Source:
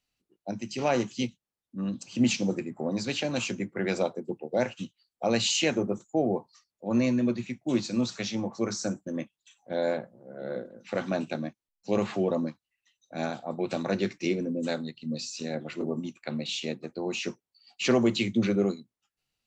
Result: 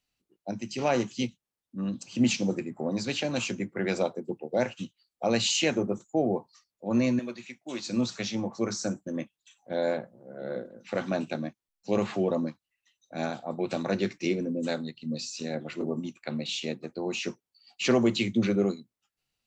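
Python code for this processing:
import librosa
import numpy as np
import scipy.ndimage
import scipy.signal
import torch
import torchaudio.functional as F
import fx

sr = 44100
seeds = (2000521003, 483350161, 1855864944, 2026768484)

y = fx.highpass(x, sr, hz=950.0, slope=6, at=(7.19, 7.87))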